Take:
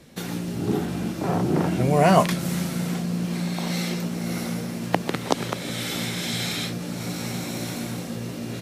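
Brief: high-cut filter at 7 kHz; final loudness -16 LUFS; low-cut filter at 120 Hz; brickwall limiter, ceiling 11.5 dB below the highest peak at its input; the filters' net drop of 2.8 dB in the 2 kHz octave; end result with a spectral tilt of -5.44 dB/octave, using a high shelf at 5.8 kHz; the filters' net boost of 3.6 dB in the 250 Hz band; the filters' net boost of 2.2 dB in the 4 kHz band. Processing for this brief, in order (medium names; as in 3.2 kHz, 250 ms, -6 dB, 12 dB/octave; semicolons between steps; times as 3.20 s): high-pass 120 Hz; low-pass 7 kHz; peaking EQ 250 Hz +6 dB; peaking EQ 2 kHz -4.5 dB; peaking EQ 4 kHz +6 dB; treble shelf 5.8 kHz -5 dB; trim +10 dB; peak limiter -5 dBFS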